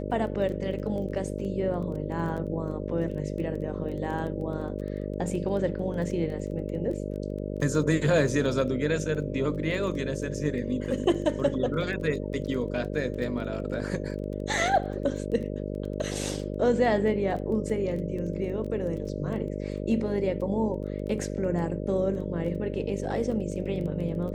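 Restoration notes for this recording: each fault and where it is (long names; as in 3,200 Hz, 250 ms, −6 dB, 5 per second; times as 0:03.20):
mains buzz 50 Hz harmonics 12 −33 dBFS
surface crackle 12 per second −35 dBFS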